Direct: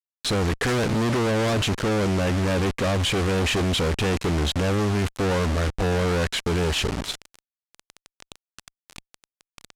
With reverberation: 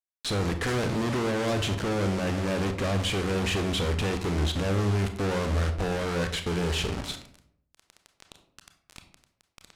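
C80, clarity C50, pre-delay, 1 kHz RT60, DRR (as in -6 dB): 13.5 dB, 9.5 dB, 25 ms, 0.60 s, 6.5 dB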